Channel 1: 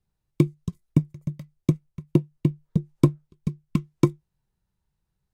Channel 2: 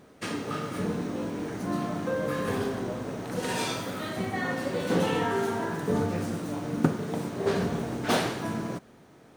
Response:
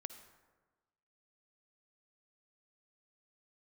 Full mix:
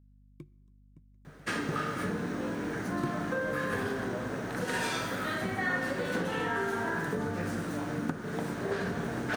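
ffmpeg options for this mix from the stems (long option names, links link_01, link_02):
-filter_complex "[0:a]aeval=exprs='val(0)*pow(10,-27*(0.5-0.5*cos(2*PI*0.63*n/s))/20)':channel_layout=same,volume=-17dB,asplit=2[link_01][link_02];[link_02]volume=-8dB[link_03];[1:a]acompressor=threshold=-28dB:ratio=12,adelay=1250,volume=-1dB[link_04];[2:a]atrim=start_sample=2205[link_05];[link_03][link_05]afir=irnorm=-1:irlink=0[link_06];[link_01][link_04][link_06]amix=inputs=3:normalize=0,equalizer=frequency=1600:width_type=o:width=0.64:gain=9,aeval=exprs='val(0)+0.00126*(sin(2*PI*50*n/s)+sin(2*PI*2*50*n/s)/2+sin(2*PI*3*50*n/s)/3+sin(2*PI*4*50*n/s)/4+sin(2*PI*5*50*n/s)/5)':channel_layout=same"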